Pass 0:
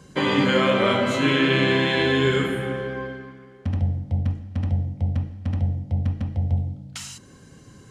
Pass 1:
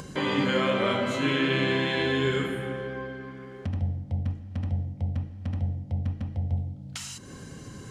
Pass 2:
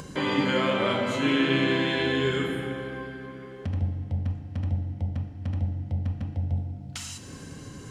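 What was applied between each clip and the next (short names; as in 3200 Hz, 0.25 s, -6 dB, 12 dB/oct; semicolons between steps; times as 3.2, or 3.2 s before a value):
upward compressor, threshold -25 dBFS; gain -5.5 dB
FDN reverb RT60 3.1 s, high-frequency decay 0.9×, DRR 9 dB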